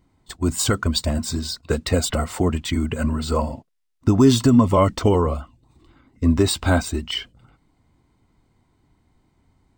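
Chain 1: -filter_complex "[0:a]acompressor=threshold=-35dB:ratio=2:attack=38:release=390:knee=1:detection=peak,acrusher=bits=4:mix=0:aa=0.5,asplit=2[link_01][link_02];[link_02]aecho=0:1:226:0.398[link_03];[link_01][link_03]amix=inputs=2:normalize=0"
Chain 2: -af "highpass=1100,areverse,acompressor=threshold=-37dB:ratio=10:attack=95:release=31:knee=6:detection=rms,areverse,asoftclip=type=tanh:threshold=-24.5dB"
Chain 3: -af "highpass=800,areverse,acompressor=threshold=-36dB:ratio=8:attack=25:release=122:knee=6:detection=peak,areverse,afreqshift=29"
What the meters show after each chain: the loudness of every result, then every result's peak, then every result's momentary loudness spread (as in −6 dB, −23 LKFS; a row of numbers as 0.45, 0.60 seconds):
−29.5, −36.0, −36.5 LKFS; −13.0, −25.0, −19.5 dBFS; 10, 10, 9 LU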